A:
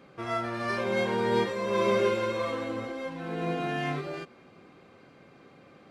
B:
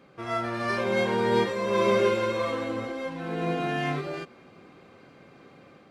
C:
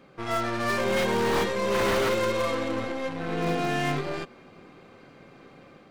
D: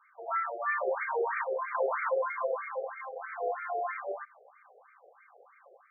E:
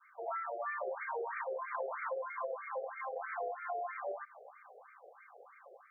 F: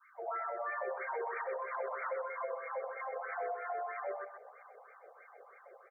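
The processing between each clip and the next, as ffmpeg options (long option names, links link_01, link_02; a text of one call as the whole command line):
ffmpeg -i in.wav -af "dynaudnorm=framelen=120:gausssize=5:maxgain=4dB,volume=-1.5dB" out.wav
ffmpeg -i in.wav -af "aeval=exprs='0.0944*(abs(mod(val(0)/0.0944+3,4)-2)-1)':channel_layout=same,aeval=exprs='0.0944*(cos(1*acos(clip(val(0)/0.0944,-1,1)))-cos(1*PI/2))+0.00944*(cos(8*acos(clip(val(0)/0.0944,-1,1)))-cos(8*PI/2))':channel_layout=same,volume=1.5dB" out.wav
ffmpeg -i in.wav -af "afftfilt=real='re*between(b*sr/1024,540*pow(1700/540,0.5+0.5*sin(2*PI*3.1*pts/sr))/1.41,540*pow(1700/540,0.5+0.5*sin(2*PI*3.1*pts/sr))*1.41)':imag='im*between(b*sr/1024,540*pow(1700/540,0.5+0.5*sin(2*PI*3.1*pts/sr))/1.41,540*pow(1700/540,0.5+0.5*sin(2*PI*3.1*pts/sr))*1.41)':win_size=1024:overlap=0.75" out.wav
ffmpeg -i in.wav -af "adynamicequalizer=threshold=0.00631:dfrequency=660:dqfactor=1.4:tfrequency=660:tqfactor=1.4:attack=5:release=100:ratio=0.375:range=2.5:mode=boostabove:tftype=bell,acompressor=threshold=-38dB:ratio=6,volume=1dB" out.wav
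ffmpeg -i in.wav -af "aecho=1:1:127|254|381:0.422|0.0759|0.0137" out.wav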